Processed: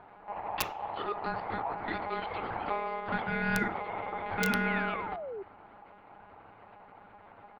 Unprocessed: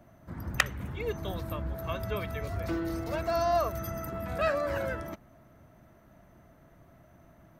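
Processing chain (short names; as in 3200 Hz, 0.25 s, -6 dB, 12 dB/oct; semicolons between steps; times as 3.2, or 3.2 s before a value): high shelf 2400 Hz -5 dB; comb 5.3 ms, depth 60%; in parallel at -1.5 dB: compressor 16:1, threshold -40 dBFS, peak gain reduction 21 dB; on the sum: monotone LPC vocoder at 8 kHz 210 Hz; ring modulator 820 Hz; wrapped overs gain 16.5 dB; on a send at -11 dB: reverb RT60 0.45 s, pre-delay 3 ms; on the sum: painted sound fall, 4.67–5.43, 370–2300 Hz -39 dBFS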